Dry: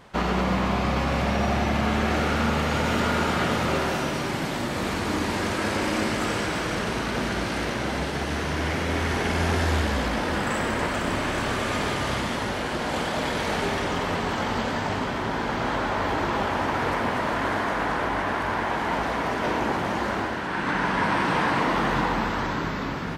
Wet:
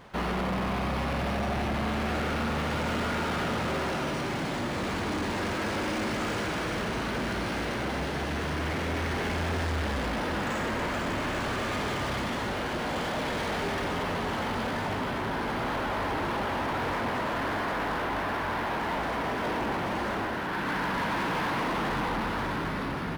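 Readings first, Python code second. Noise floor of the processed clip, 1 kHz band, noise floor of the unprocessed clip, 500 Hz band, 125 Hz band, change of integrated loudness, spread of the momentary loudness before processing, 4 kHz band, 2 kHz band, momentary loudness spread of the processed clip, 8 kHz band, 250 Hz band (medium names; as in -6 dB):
-32 dBFS, -4.5 dB, -29 dBFS, -4.5 dB, -5.0 dB, -4.5 dB, 4 LU, -4.5 dB, -4.5 dB, 2 LU, -6.5 dB, -4.5 dB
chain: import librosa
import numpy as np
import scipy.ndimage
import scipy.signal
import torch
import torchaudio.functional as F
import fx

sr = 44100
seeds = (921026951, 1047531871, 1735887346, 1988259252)

y = 10.0 ** (-26.0 / 20.0) * np.tanh(x / 10.0 ** (-26.0 / 20.0))
y = np.interp(np.arange(len(y)), np.arange(len(y))[::3], y[::3])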